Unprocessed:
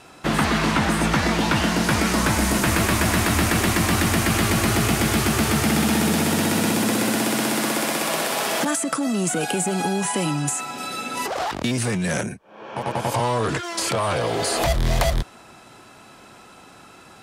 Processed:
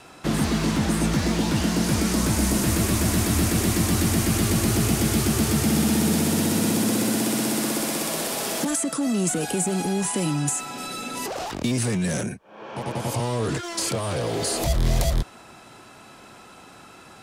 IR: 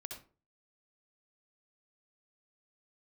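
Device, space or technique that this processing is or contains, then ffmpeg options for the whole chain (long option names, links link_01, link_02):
one-band saturation: -filter_complex "[0:a]acrossover=split=500|4200[link_01][link_02][link_03];[link_02]asoftclip=type=tanh:threshold=-33dB[link_04];[link_01][link_04][link_03]amix=inputs=3:normalize=0"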